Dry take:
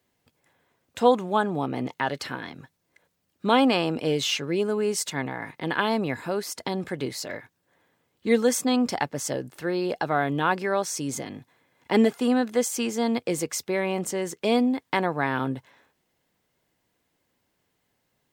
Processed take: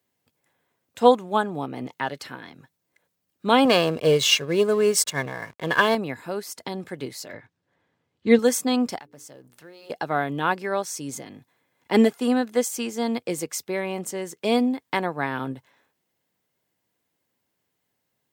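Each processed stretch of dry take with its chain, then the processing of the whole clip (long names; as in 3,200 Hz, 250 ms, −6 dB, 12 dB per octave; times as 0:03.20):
0:03.65–0:05.95: leveller curve on the samples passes 1 + comb filter 1.8 ms, depth 51% + slack as between gear wheels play −37 dBFS
0:07.33–0:08.39: low-pass filter 5,100 Hz + low-shelf EQ 140 Hz +11 dB
0:08.98–0:09.90: mu-law and A-law mismatch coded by A + mains-hum notches 60/120/180/240/300/360/420/480 Hz + downward compressor 2.5 to 1, threshold −42 dBFS
whole clip: high-pass filter 80 Hz; high-shelf EQ 8,800 Hz +6 dB; expander for the loud parts 1.5 to 1, over −32 dBFS; level +4 dB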